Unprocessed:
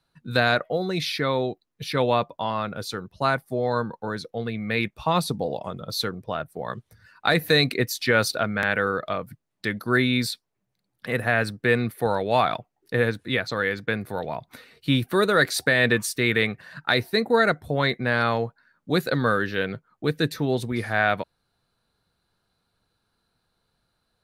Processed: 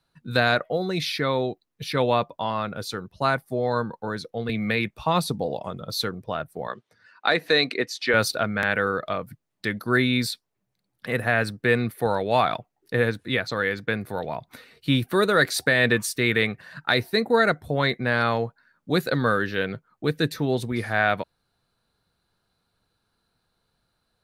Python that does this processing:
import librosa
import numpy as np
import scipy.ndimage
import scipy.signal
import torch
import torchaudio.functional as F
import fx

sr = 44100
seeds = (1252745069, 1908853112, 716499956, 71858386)

y = fx.band_squash(x, sr, depth_pct=70, at=(4.49, 4.99))
y = fx.bandpass_edges(y, sr, low_hz=290.0, high_hz=5500.0, at=(6.67, 8.14))